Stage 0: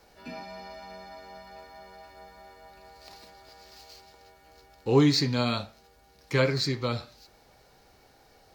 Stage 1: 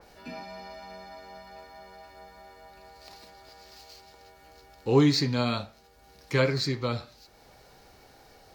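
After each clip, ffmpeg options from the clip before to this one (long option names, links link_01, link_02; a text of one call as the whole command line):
ffmpeg -i in.wav -af "acompressor=mode=upward:threshold=-48dB:ratio=2.5,adynamicequalizer=threshold=0.00891:dfrequency=2600:dqfactor=0.7:tfrequency=2600:tqfactor=0.7:attack=5:release=100:ratio=0.375:range=1.5:mode=cutabove:tftype=highshelf" out.wav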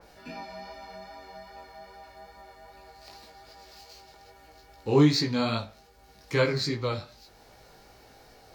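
ffmpeg -i in.wav -af "areverse,acompressor=mode=upward:threshold=-50dB:ratio=2.5,areverse,flanger=delay=17.5:depth=2.8:speed=2.5,volume=3dB" out.wav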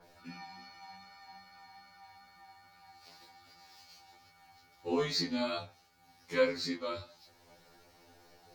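ffmpeg -i in.wav -af "afftfilt=real='re*2*eq(mod(b,4),0)':imag='im*2*eq(mod(b,4),0)':win_size=2048:overlap=0.75,volume=-4dB" out.wav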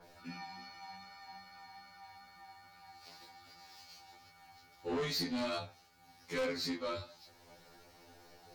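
ffmpeg -i in.wav -af "asoftclip=type=tanh:threshold=-33dB,volume=1.5dB" out.wav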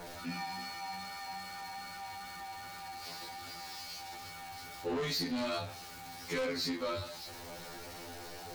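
ffmpeg -i in.wav -af "aeval=exprs='val(0)+0.5*0.00355*sgn(val(0))':channel_layout=same,acompressor=threshold=-38dB:ratio=5,volume=5dB" out.wav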